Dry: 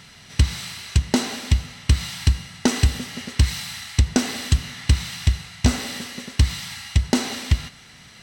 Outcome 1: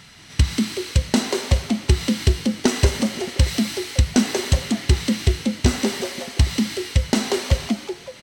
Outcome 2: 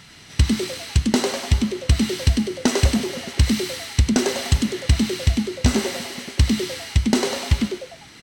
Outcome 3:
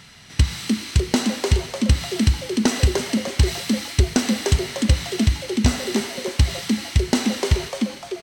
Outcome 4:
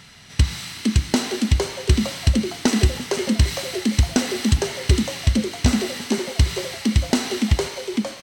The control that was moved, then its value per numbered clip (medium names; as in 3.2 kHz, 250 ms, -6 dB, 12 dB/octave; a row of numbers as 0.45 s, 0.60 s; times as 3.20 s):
frequency-shifting echo, time: 186 ms, 99 ms, 299 ms, 458 ms